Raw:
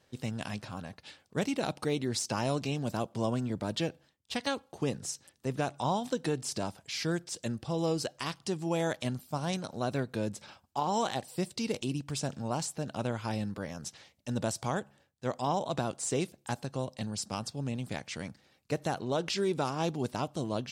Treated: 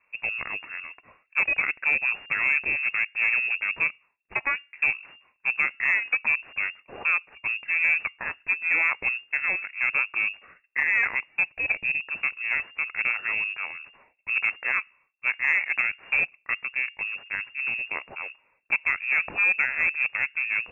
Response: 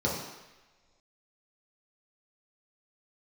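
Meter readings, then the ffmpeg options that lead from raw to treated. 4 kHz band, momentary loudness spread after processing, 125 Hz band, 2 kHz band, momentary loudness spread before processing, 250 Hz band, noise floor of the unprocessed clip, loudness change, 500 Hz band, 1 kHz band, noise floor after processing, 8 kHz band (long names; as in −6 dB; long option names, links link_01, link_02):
can't be measured, 10 LU, below −20 dB, +21.5 dB, 7 LU, below −15 dB, −70 dBFS, +9.5 dB, −13.0 dB, −2.5 dB, −69 dBFS, below −25 dB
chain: -af "aeval=exprs='0.119*(cos(1*acos(clip(val(0)/0.119,-1,1)))-cos(1*PI/2))+0.0211*(cos(2*acos(clip(val(0)/0.119,-1,1)))-cos(2*PI/2))+0.0133*(cos(5*acos(clip(val(0)/0.119,-1,1)))-cos(5*PI/2))+0.0168*(cos(7*acos(clip(val(0)/0.119,-1,1)))-cos(7*PI/2))+0.00473*(cos(8*acos(clip(val(0)/0.119,-1,1)))-cos(8*PI/2))':channel_layout=same,lowpass=frequency=2400:width_type=q:width=0.5098,lowpass=frequency=2400:width_type=q:width=0.6013,lowpass=frequency=2400:width_type=q:width=0.9,lowpass=frequency=2400:width_type=q:width=2.563,afreqshift=-2800,acontrast=57"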